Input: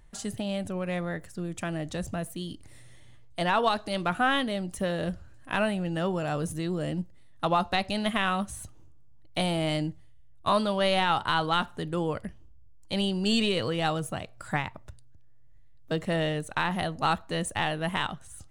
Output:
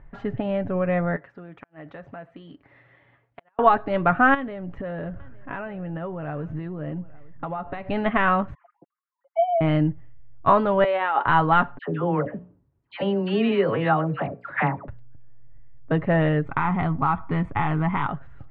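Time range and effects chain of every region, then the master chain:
1.16–3.59 HPF 680 Hz 6 dB/oct + compressor 4:1, threshold -43 dBFS + flipped gate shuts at -31 dBFS, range -35 dB
4.34–7.9 compressor 8:1, threshold -35 dBFS + echo 0.858 s -22 dB
8.54–9.61 sine-wave speech + band-pass 190 Hz, Q 0.55 + comb 5.8 ms, depth 90%
10.84–11.26 HPF 340 Hz 24 dB/oct + negative-ratio compressor -30 dBFS
11.78–14.88 HPF 150 Hz + notches 60/120/180/240/300/360/420/480/540/600 Hz + dispersion lows, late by 99 ms, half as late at 1200 Hz
16.45–18.08 comb 0.9 ms, depth 69% + compressor 4:1, threshold -26 dBFS
whole clip: LPF 2000 Hz 24 dB/oct; comb 7.2 ms, depth 41%; gain +7.5 dB

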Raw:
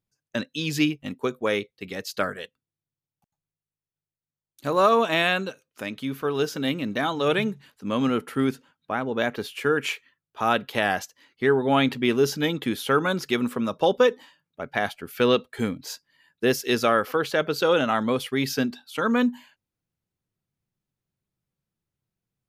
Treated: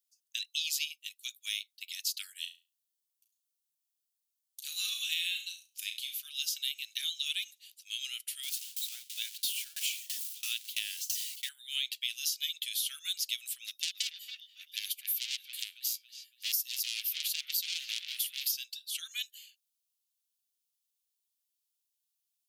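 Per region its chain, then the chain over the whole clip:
2.32–6.17 doubler 45 ms -13 dB + flutter echo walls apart 6 m, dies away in 0.28 s
8.43–11.49 zero-crossing step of -30.5 dBFS + tremolo saw down 3 Hz, depth 95%
13.66–18.52 bell 13000 Hz +10 dB 0.49 oct + dark delay 0.278 s, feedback 35%, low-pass 3400 Hz, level -9 dB + core saturation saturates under 3400 Hz
whole clip: steep high-pass 2800 Hz 36 dB/oct; high shelf 5800 Hz +10 dB; compressor 6:1, threshold -31 dBFS; gain +1.5 dB

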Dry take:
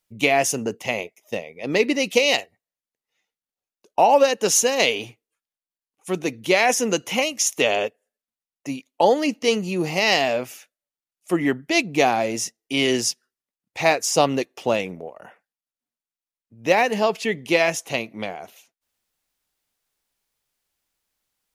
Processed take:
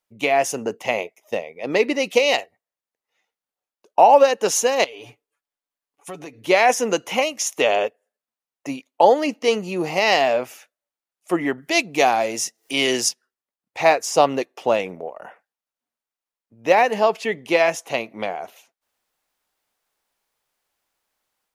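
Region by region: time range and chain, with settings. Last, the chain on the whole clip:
4.84–6.47 comb 7 ms, depth 62% + compressor 12:1, threshold -33 dBFS
11.58–13.09 upward compressor, threshold -32 dBFS + high shelf 2800 Hz +8.5 dB
whole clip: low shelf 180 Hz -4 dB; AGC gain up to 6 dB; bell 830 Hz +8 dB 2.6 oct; gain -6.5 dB

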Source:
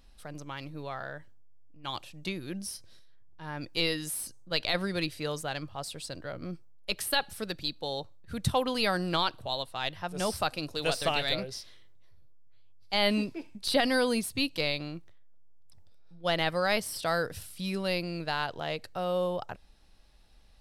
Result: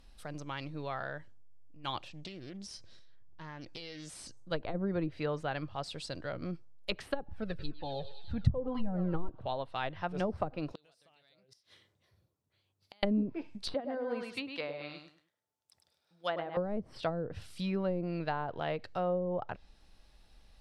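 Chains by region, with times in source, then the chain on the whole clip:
2.08–4.37 LPF 7900 Hz 24 dB/oct + compressor 12:1, threshold -40 dBFS + Doppler distortion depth 0.27 ms
7.28–9.29 tilt -2 dB/oct + thinning echo 0.1 s, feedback 83%, high-pass 790 Hz, level -11 dB + cascading flanger falling 2 Hz
10.72–13.03 HPF 93 Hz + compressor 3:1, threshold -34 dBFS + flipped gate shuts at -31 dBFS, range -30 dB
13.74–16.57 HPF 910 Hz 6 dB/oct + feedback echo 0.102 s, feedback 27%, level -6 dB
whole clip: treble ducked by the level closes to 370 Hz, closed at -24.5 dBFS; high shelf 9100 Hz -3 dB

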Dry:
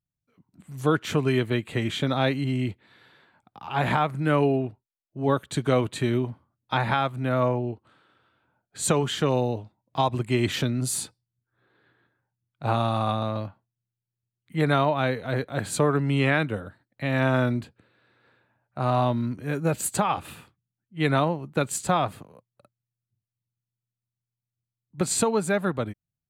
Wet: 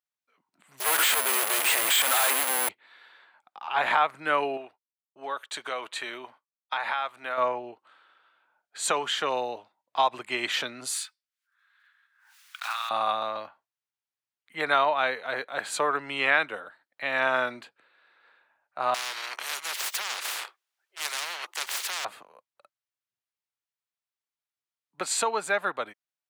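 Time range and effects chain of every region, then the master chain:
0.8–2.69 infinite clipping + HPF 270 Hz + careless resampling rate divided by 4×, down filtered, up zero stuff
4.57–7.38 expander -48 dBFS + low shelf 300 Hz -11.5 dB + compressor 3:1, threshold -27 dBFS
10.94–12.91 block floating point 5-bit + HPF 1300 Hz 24 dB/oct + backwards sustainer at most 70 dB/s
18.94–22.05 steep high-pass 350 Hz 96 dB/oct + sample leveller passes 2 + spectral compressor 10:1
whole clip: HPF 850 Hz 12 dB/oct; high shelf 6200 Hz -11 dB; gain +4.5 dB

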